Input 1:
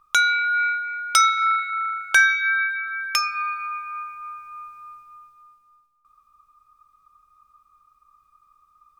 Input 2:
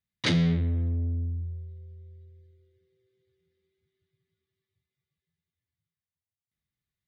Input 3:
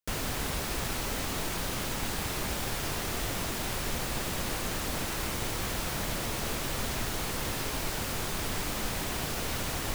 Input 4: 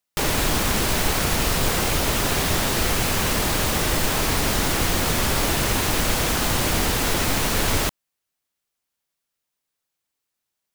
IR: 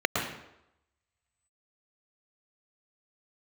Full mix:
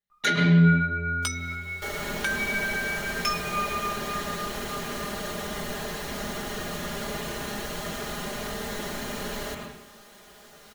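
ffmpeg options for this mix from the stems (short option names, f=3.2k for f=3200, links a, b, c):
-filter_complex "[0:a]adelay=100,volume=-4dB[a];[1:a]volume=-5.5dB,asplit=2[b][c];[c]volume=-8.5dB[d];[2:a]lowshelf=f=190:g=-10.5,adelay=1150,volume=-18dB,asplit=2[e][f];[f]volume=-17dB[g];[3:a]adelay=1650,volume=-20dB,asplit=2[h][i];[i]volume=-7.5dB[j];[a][b][e]amix=inputs=3:normalize=0,flanger=delay=16:depth=2.5:speed=0.87,acompressor=threshold=-28dB:ratio=6,volume=0dB[k];[4:a]atrim=start_sample=2205[l];[d][g][j]amix=inputs=3:normalize=0[m];[m][l]afir=irnorm=-1:irlink=0[n];[h][k][n]amix=inputs=3:normalize=0,aecho=1:1:4.9:0.88"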